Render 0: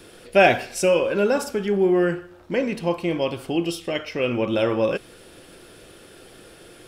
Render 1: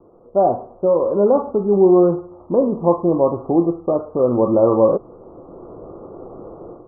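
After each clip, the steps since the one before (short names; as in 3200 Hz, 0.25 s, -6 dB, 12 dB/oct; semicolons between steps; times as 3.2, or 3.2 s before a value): AGC gain up to 14 dB; steep low-pass 1200 Hz 96 dB/oct; low shelf 220 Hz -5.5 dB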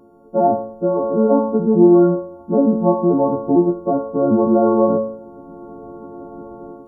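frequency quantiser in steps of 4 st; bell 230 Hz +12 dB 0.42 oct; de-hum 110.6 Hz, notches 11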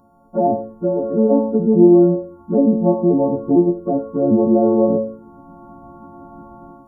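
envelope phaser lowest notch 390 Hz, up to 1300 Hz, full sweep at -13.5 dBFS; gain +1.5 dB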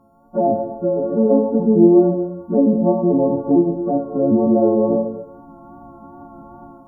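wow and flutter 30 cents; reverb, pre-delay 3 ms, DRR 9 dB; gain -1 dB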